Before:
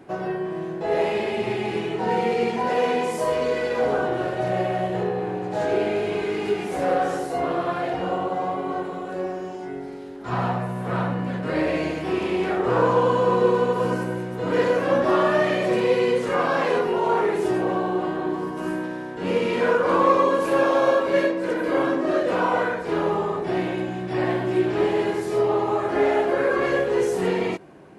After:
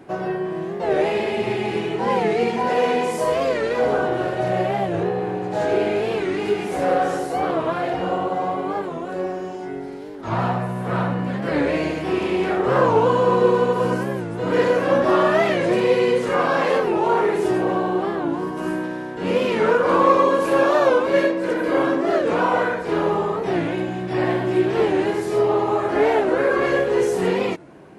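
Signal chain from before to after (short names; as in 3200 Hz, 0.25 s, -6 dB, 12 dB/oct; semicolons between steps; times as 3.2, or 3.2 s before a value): record warp 45 rpm, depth 160 cents; gain +2.5 dB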